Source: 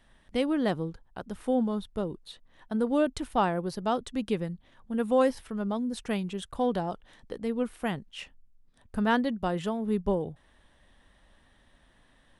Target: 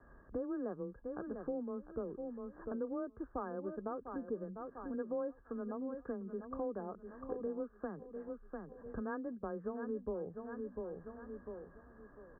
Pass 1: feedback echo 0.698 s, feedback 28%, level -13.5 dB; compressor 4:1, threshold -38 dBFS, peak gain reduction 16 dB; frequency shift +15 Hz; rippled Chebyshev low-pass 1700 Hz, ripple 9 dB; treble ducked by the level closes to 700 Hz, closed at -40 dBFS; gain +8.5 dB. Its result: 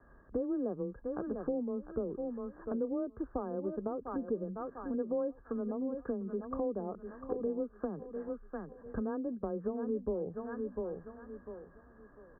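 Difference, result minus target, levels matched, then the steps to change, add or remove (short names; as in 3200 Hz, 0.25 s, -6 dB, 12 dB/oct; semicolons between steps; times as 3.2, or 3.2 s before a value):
compressor: peak gain reduction -5.5 dB
change: compressor 4:1, threshold -45.5 dBFS, peak gain reduction 21.5 dB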